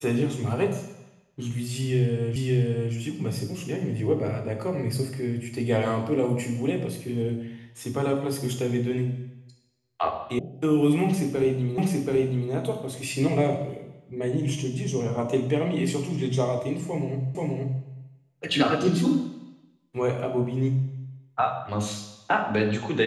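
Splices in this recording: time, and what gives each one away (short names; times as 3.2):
2.36 repeat of the last 0.57 s
10.39 sound cut off
11.78 repeat of the last 0.73 s
17.35 repeat of the last 0.48 s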